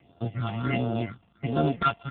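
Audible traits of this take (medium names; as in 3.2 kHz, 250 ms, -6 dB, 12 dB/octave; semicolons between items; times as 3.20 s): a buzz of ramps at a fixed pitch in blocks of 64 samples; phasing stages 6, 1.4 Hz, lowest notch 440–2100 Hz; AMR-NB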